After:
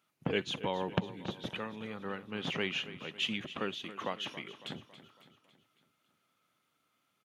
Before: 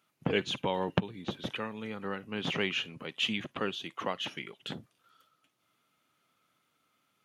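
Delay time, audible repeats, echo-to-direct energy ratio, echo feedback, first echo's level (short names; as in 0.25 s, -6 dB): 0.277 s, 4, -13.0 dB, 52%, -14.5 dB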